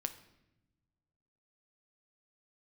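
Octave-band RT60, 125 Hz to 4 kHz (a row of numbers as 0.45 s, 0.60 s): 2.0 s, 1.7 s, 1.1 s, 0.80 s, 0.85 s, 0.75 s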